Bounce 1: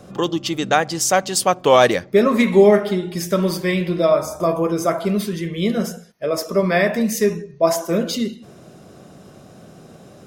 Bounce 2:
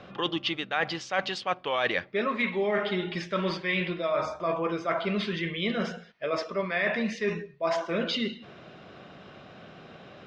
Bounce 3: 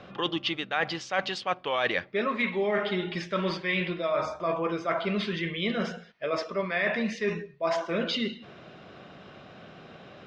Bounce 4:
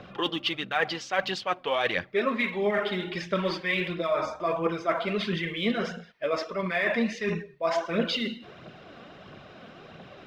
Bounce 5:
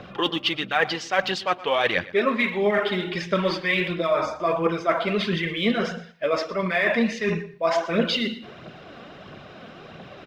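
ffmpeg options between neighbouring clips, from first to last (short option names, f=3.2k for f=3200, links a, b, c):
-af "lowpass=f=3.3k:w=0.5412,lowpass=f=3.3k:w=1.3066,tiltshelf=f=970:g=-8,areverse,acompressor=threshold=-25dB:ratio=6,areverse"
-af anull
-af "aphaser=in_gain=1:out_gain=1:delay=4.5:decay=0.44:speed=1.5:type=triangular"
-af "aecho=1:1:117|234:0.126|0.0252,volume=4.5dB"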